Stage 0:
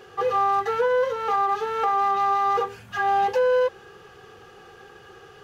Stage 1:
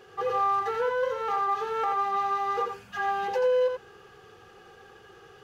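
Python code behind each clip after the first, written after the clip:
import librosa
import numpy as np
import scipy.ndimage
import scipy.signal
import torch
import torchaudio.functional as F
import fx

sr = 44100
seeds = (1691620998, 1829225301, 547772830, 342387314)

y = x + 10.0 ** (-5.5 / 20.0) * np.pad(x, (int(85 * sr / 1000.0), 0))[:len(x)]
y = F.gain(torch.from_numpy(y), -5.5).numpy()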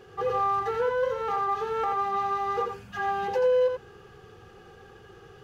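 y = fx.low_shelf(x, sr, hz=290.0, db=11.0)
y = F.gain(torch.from_numpy(y), -1.5).numpy()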